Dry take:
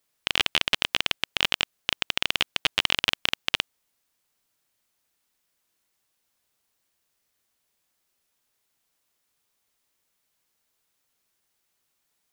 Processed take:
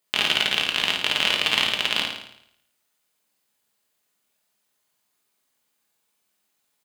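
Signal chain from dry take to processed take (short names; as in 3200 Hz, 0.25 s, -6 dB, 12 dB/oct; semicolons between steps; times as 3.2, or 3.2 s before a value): HPF 150 Hz 6 dB/oct; notch 5600 Hz, Q 15; tempo 1.8×; flutter echo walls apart 9.4 m, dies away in 0.72 s; shoebox room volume 300 m³, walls furnished, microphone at 1.4 m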